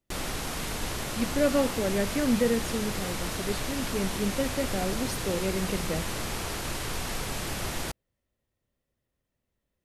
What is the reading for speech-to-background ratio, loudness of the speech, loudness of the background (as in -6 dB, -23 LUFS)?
2.0 dB, -30.5 LUFS, -32.5 LUFS